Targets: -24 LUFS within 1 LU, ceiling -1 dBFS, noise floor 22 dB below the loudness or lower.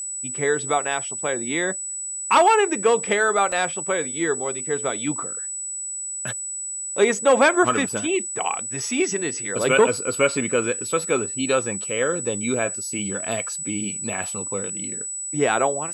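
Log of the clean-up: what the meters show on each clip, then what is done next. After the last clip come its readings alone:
dropouts 2; longest dropout 3.6 ms; steady tone 7.9 kHz; tone level -28 dBFS; loudness -22.5 LUFS; peak level -5.0 dBFS; loudness target -24.0 LUFS
-> interpolate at 3.52/7.89 s, 3.6 ms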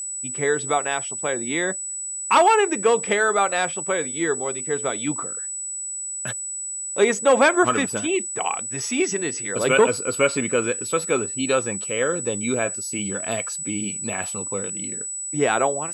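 dropouts 0; steady tone 7.9 kHz; tone level -28 dBFS
-> band-stop 7.9 kHz, Q 30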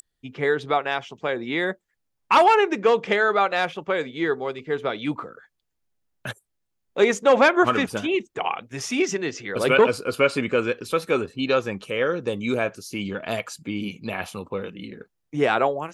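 steady tone not found; loudness -23.0 LUFS; peak level -5.0 dBFS; loudness target -24.0 LUFS
-> trim -1 dB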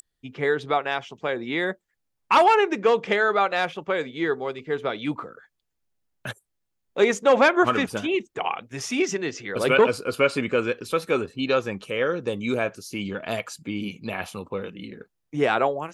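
loudness -24.0 LUFS; peak level -6.0 dBFS; noise floor -77 dBFS

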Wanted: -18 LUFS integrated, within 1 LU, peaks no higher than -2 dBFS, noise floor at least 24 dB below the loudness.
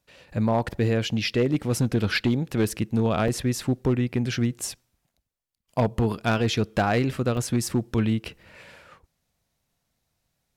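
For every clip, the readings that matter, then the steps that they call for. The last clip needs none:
clipped samples 0.8%; clipping level -15.0 dBFS; dropouts 2; longest dropout 2.9 ms; loudness -25.0 LUFS; peak level -15.0 dBFS; loudness target -18.0 LUFS
-> clip repair -15 dBFS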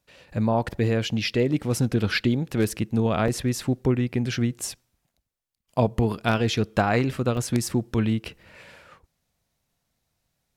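clipped samples 0.0%; dropouts 2; longest dropout 2.9 ms
-> interpolate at 3.28/7.37 s, 2.9 ms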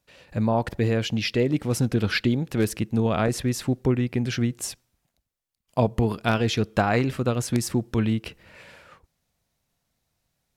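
dropouts 0; loudness -25.0 LUFS; peak level -6.0 dBFS; loudness target -18.0 LUFS
-> trim +7 dB; peak limiter -2 dBFS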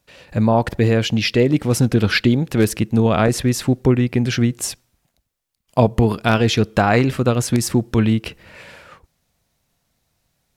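loudness -18.0 LUFS; peak level -2.0 dBFS; noise floor -71 dBFS

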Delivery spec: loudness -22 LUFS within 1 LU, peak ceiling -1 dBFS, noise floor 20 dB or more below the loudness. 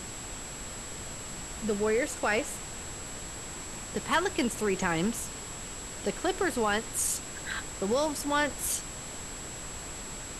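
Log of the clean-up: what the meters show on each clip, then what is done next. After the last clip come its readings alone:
steady tone 7.7 kHz; tone level -42 dBFS; noise floor -41 dBFS; noise floor target -52 dBFS; loudness -32.0 LUFS; peak level -12.0 dBFS; loudness target -22.0 LUFS
-> band-stop 7.7 kHz, Q 30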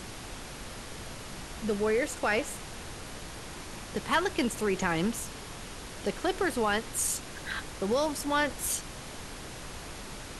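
steady tone not found; noise floor -43 dBFS; noise floor target -53 dBFS
-> noise print and reduce 10 dB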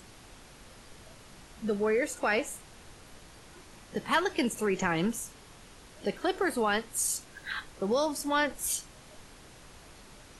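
noise floor -53 dBFS; loudness -30.5 LUFS; peak level -12.5 dBFS; loudness target -22.0 LUFS
-> trim +8.5 dB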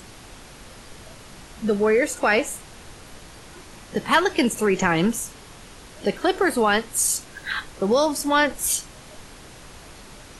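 loudness -22.0 LUFS; peak level -4.0 dBFS; noise floor -44 dBFS

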